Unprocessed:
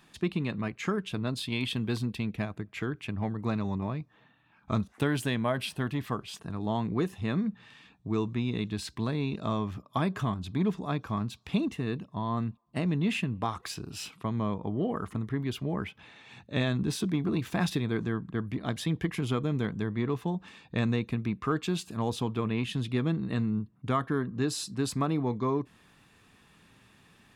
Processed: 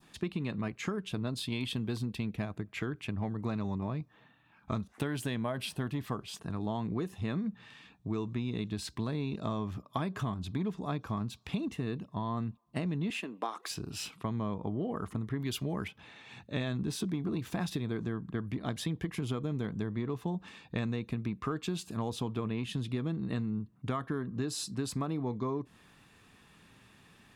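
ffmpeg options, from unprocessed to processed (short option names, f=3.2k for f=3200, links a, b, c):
-filter_complex "[0:a]asettb=1/sr,asplit=3[a][b][c];[a]atrim=end=13.104[d];[b]atrim=start=13.1:end=13.71,asetpts=PTS-STARTPTS,afade=t=in:d=0.004:c=qsin,afade=t=out:st=0.606:d=0.004:c=qsin,highpass=f=290:w=0.5412,highpass=f=290:w=1.3066[e];[c]atrim=start=13.706[f];[d][e]acrossfade=d=0.004:c1=hsin:c2=qsin[g];[g][f]acrossfade=d=0.004:c1=qsin:c2=hsin,asettb=1/sr,asplit=3[h][i][j];[h]atrim=end=15.404[k];[i]atrim=start=15.4:end=15.88,asetpts=PTS-STARTPTS,afade=t=in:d=0.004:c=qsin,afade=t=out:st=0.476:d=0.004:c=qsin,highshelf=f=3.1k:g=11[l];[j]atrim=start=15.876[m];[k][l]acrossfade=d=0.004:c1=hsin:c2=qsin[n];[n][m]acrossfade=d=0.004:c1=qsin:c2=hsin,adynamicequalizer=threshold=0.00398:dfrequency=2100:dqfactor=0.85:tfrequency=2100:tqfactor=0.85:attack=5:release=100:ratio=0.375:range=2:mode=cutabove:tftype=bell,acompressor=threshold=-30dB:ratio=6"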